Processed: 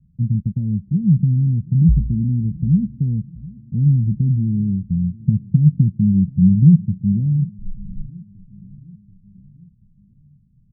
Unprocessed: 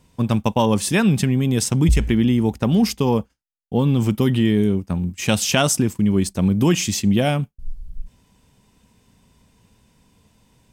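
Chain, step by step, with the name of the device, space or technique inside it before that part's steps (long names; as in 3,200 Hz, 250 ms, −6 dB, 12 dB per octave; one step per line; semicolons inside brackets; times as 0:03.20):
low-pass filter 1,200 Hz
0:05.14–0:07.03: parametric band 150 Hz +6.5 dB 0.89 octaves
the neighbour's flat through the wall (low-pass filter 180 Hz 24 dB per octave; parametric band 160 Hz +7.5 dB 0.94 octaves)
repeating echo 733 ms, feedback 56%, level −21.5 dB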